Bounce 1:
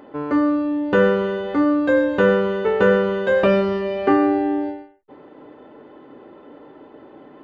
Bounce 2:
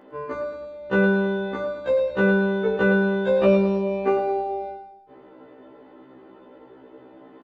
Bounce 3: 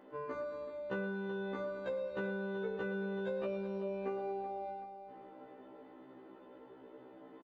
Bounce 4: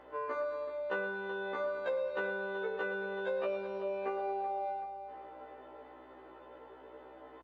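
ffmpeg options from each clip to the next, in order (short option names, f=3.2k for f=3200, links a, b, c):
-af "aecho=1:1:108|216|324|432|540|648:0.316|0.164|0.0855|0.0445|0.0231|0.012,afftfilt=real='re*1.73*eq(mod(b,3),0)':imag='im*1.73*eq(mod(b,3),0)':win_size=2048:overlap=0.75,volume=-2dB"
-filter_complex "[0:a]equalizer=f=77:w=2.3:g=-6,acompressor=threshold=-29dB:ratio=5,asplit=2[a][b];[b]aecho=0:1:380|760|1140|1520|1900:0.237|0.111|0.0524|0.0246|0.0116[c];[a][c]amix=inputs=2:normalize=0,volume=-8dB"
-af "highpass=550,aeval=exprs='val(0)+0.000126*(sin(2*PI*60*n/s)+sin(2*PI*2*60*n/s)/2+sin(2*PI*3*60*n/s)/3+sin(2*PI*4*60*n/s)/4+sin(2*PI*5*60*n/s)/5)':c=same,lowpass=f=3.3k:p=1,volume=7.5dB"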